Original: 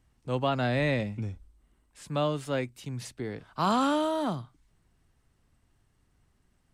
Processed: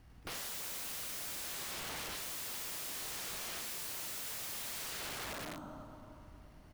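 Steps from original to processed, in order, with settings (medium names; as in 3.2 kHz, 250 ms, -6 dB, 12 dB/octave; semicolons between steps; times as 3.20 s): resampled via 22.05 kHz; sample-and-hold 6×; dynamic bell 1.5 kHz, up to +6 dB, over -59 dBFS, Q 4.2; reverse bouncing-ball echo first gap 100 ms, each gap 1.2×, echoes 5; on a send at -6 dB: reverberation RT60 2.9 s, pre-delay 36 ms; on the sum: integer overflow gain 44.5 dB; trim +7 dB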